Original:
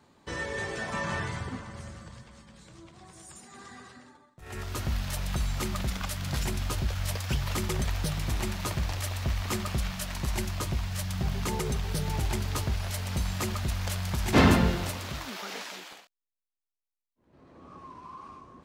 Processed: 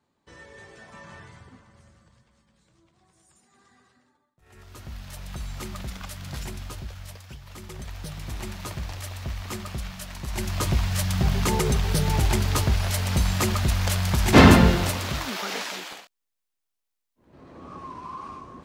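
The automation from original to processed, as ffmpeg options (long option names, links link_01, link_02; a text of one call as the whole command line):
ffmpeg -i in.wav -af "volume=18.5dB,afade=type=in:start_time=4.55:duration=1.07:silence=0.354813,afade=type=out:start_time=6.41:duration=1:silence=0.281838,afade=type=in:start_time=7.41:duration=1.11:silence=0.251189,afade=type=in:start_time=10.27:duration=0.43:silence=0.298538" out.wav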